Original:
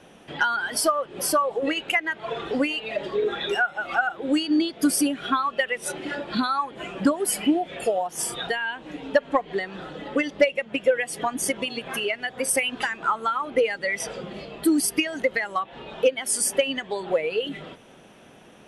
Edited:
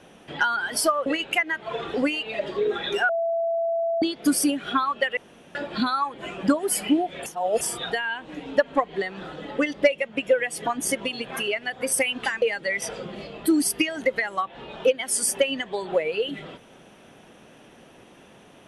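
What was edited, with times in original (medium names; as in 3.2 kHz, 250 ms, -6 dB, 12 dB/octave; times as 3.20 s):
1.06–1.63 s: delete
3.66–4.59 s: bleep 668 Hz -21.5 dBFS
5.74–6.12 s: room tone
7.83–8.18 s: reverse
12.99–13.60 s: delete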